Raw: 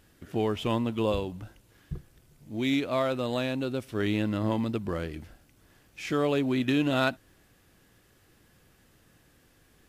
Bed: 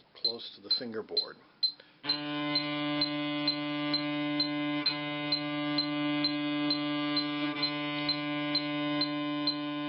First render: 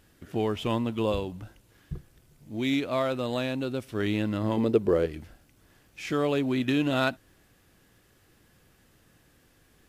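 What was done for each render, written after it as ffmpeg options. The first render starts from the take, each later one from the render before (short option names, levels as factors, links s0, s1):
-filter_complex "[0:a]asettb=1/sr,asplit=3[s0][s1][s2];[s0]atrim=end=4.574[s3];[s1]atrim=start=4.57:end=5.06,asetpts=PTS-STARTPTS,afade=t=in:d=0.004:c=qsin,afade=t=out:st=0.486:d=0.004:c=qsin,equalizer=f=440:t=o:w=0.87:g=14.5[s4];[s2]atrim=start=5.056[s5];[s3][s4]acrossfade=d=0.004:c1=hsin:c2=qsin[s6];[s6][s5]acrossfade=d=0.004:c1=qsin:c2=hsin"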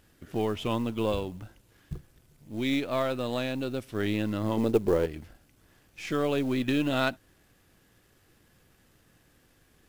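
-af "aeval=exprs='if(lt(val(0),0),0.708*val(0),val(0))':c=same,acrusher=bits=7:mode=log:mix=0:aa=0.000001"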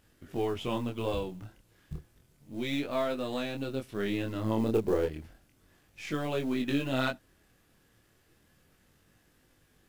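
-af "flanger=delay=19.5:depth=7.9:speed=0.32"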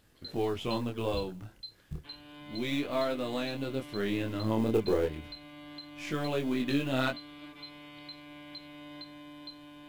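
-filter_complex "[1:a]volume=0.168[s0];[0:a][s0]amix=inputs=2:normalize=0"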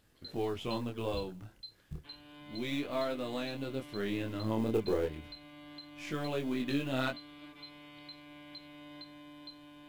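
-af "volume=0.668"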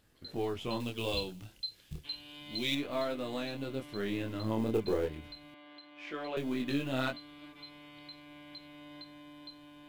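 -filter_complex "[0:a]asettb=1/sr,asplit=3[s0][s1][s2];[s0]atrim=end=0.804[s3];[s1]atrim=start=0.8:end=2.75,asetpts=PTS-STARTPTS,afade=t=in:d=0.004:c=qsin,afade=t=out:st=1.946:d=0.004:c=qsin,highshelf=f=2100:t=q:w=1.5:g=8[s4];[s2]atrim=start=2.746[s5];[s3][s4]acrossfade=d=0.004:c1=hsin:c2=qsin[s6];[s6][s5]acrossfade=d=0.004:c1=qsin:c2=hsin,asettb=1/sr,asplit=3[s7][s8][s9];[s7]atrim=end=5.544[s10];[s8]atrim=start=5.54:end=6.37,asetpts=PTS-STARTPTS,afade=t=in:d=0.004:c=qsin,afade=t=out:st=0.826:d=0.004:c=qsin,acrossover=split=290 4100:gain=0.0708 1 0.112[s11][s12][s13];[s11][s12][s13]amix=inputs=3:normalize=0[s14];[s9]atrim=start=6.366[s15];[s10][s14]acrossfade=d=0.004:c1=hsin:c2=qsin[s16];[s16][s15]acrossfade=d=0.004:c1=qsin:c2=hsin"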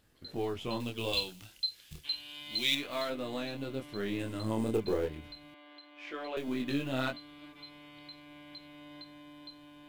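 -filter_complex "[0:a]asettb=1/sr,asplit=3[s0][s1][s2];[s0]atrim=end=1.134[s3];[s1]atrim=start=1.13:end=3.1,asetpts=PTS-STARTPTS,afade=t=in:d=0.004:c=qsin,afade=t=out:st=1.966:d=0.004:c=qsin,tiltshelf=f=970:g=-6[s4];[s2]atrim=start=3.096[s5];[s3][s4]acrossfade=d=0.004:c1=hsin:c2=qsin[s6];[s6][s5]acrossfade=d=0.004:c1=qsin:c2=hsin,asettb=1/sr,asplit=3[s7][s8][s9];[s7]atrim=end=4.194[s10];[s8]atrim=start=4.19:end=4.76,asetpts=PTS-STARTPTS,afade=t=in:d=0.004:c=qsin,afade=t=out:st=0.566:d=0.004:c=qsin,equalizer=f=8500:w=2.6:g=12.5[s11];[s9]atrim=start=4.756[s12];[s10][s11]acrossfade=d=0.004:c1=hsin:c2=qsin[s13];[s13][s12]acrossfade=d=0.004:c1=qsin:c2=hsin,asettb=1/sr,asplit=3[s14][s15][s16];[s14]atrim=end=5.534[s17];[s15]atrim=start=5.53:end=6.48,asetpts=PTS-STARTPTS,afade=t=in:d=0.004:c=qsin,afade=t=out:st=0.946:d=0.004:c=qsin,equalizer=f=160:t=o:w=0.77:g=-12[s18];[s16]atrim=start=6.476[s19];[s17][s18]acrossfade=d=0.004:c1=hsin:c2=qsin[s20];[s20][s19]acrossfade=d=0.004:c1=qsin:c2=hsin"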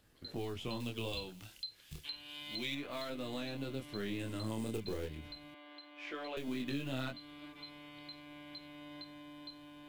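-filter_complex "[0:a]acrossover=split=230|2100[s0][s1][s2];[s0]acompressor=threshold=0.01:ratio=4[s3];[s1]acompressor=threshold=0.00794:ratio=4[s4];[s2]acompressor=threshold=0.00562:ratio=4[s5];[s3][s4][s5]amix=inputs=3:normalize=0"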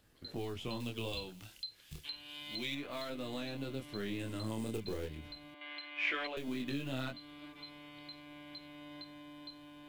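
-filter_complex "[0:a]asettb=1/sr,asplit=3[s0][s1][s2];[s0]atrim=end=5.614[s3];[s1]atrim=start=5.61:end=6.27,asetpts=PTS-STARTPTS,afade=t=in:d=0.004:c=qsin,afade=t=out:st=0.656:d=0.004:c=qsin,equalizer=f=2300:w=0.92:g=14.5[s4];[s2]atrim=start=6.266[s5];[s3][s4]acrossfade=d=0.004:c1=hsin:c2=qsin[s6];[s6][s5]acrossfade=d=0.004:c1=qsin:c2=hsin"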